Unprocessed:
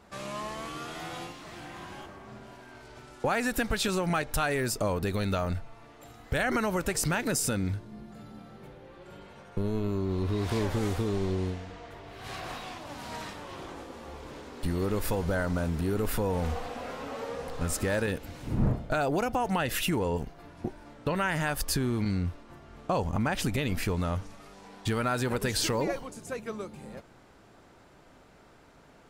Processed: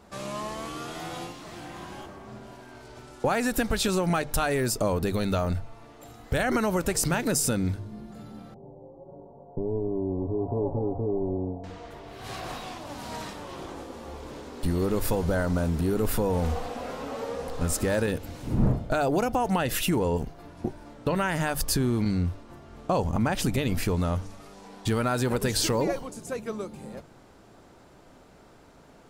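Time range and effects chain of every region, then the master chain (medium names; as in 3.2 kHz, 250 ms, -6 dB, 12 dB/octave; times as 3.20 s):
8.54–11.64 s: steep low-pass 880 Hz 48 dB/octave + tilt EQ +1.5 dB/octave + comb 7.2 ms, depth 54%
whole clip: peaking EQ 2 kHz -4.5 dB 1.8 oct; hum notches 50/100/150 Hz; trim +4 dB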